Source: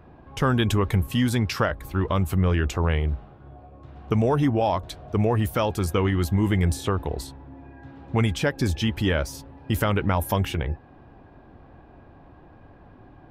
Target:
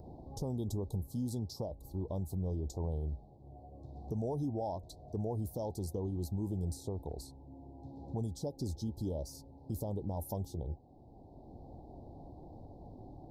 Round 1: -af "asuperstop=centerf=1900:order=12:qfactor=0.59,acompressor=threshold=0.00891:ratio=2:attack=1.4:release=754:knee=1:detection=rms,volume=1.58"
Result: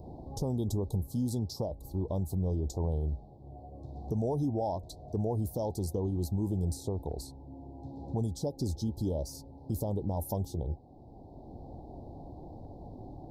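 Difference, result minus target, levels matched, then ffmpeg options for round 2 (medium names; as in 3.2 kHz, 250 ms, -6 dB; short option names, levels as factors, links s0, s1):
compression: peak gain reduction -5 dB
-af "asuperstop=centerf=1900:order=12:qfactor=0.59,acompressor=threshold=0.00282:ratio=2:attack=1.4:release=754:knee=1:detection=rms,volume=1.58"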